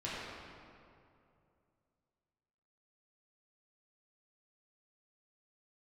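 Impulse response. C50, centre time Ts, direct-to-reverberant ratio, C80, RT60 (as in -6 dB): -3.5 dB, 0.152 s, -9.5 dB, -1.5 dB, 2.6 s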